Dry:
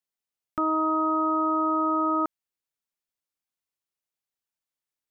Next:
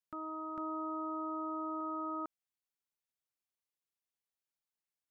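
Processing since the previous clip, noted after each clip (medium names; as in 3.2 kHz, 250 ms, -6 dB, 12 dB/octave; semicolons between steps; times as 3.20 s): reverse echo 451 ms -11 dB; peak limiter -26 dBFS, peak gain reduction 9 dB; trim -6.5 dB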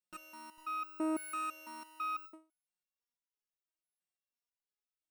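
sorted samples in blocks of 16 samples; resonator arpeggio 6 Hz 180–1300 Hz; trim +10.5 dB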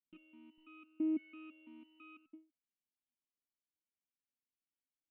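cascade formant filter i; trim +6.5 dB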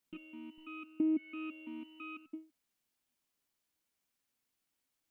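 compression 2:1, threshold -46 dBFS, peak gain reduction 8 dB; trim +11 dB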